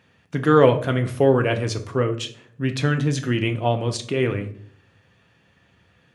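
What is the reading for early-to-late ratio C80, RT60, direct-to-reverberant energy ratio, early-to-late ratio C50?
17.5 dB, 0.60 s, 5.5 dB, 13.0 dB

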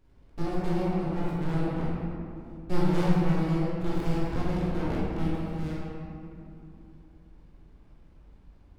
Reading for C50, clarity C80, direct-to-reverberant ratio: -3.5 dB, -1.5 dB, -7.5 dB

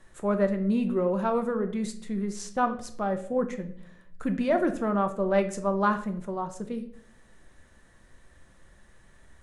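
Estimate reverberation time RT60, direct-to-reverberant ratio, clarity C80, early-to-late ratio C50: 0.60 s, 6.5 dB, 15.5 dB, 12.5 dB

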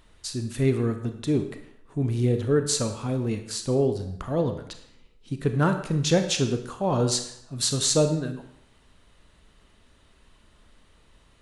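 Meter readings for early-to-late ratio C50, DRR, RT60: 9.0 dB, 6.5 dB, 0.70 s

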